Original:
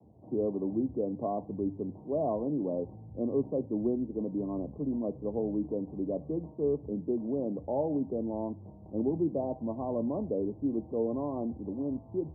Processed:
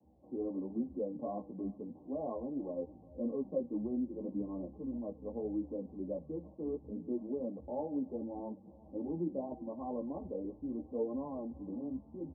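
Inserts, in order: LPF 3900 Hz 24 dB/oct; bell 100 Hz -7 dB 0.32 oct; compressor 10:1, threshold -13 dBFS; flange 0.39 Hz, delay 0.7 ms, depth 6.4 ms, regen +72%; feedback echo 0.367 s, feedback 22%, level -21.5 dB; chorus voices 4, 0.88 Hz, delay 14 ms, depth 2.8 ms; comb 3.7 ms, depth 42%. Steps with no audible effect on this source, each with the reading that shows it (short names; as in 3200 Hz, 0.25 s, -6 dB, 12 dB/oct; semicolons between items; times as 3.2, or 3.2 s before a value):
LPF 3900 Hz: input band ends at 910 Hz; compressor, threshold -13 dBFS: input peak -19.5 dBFS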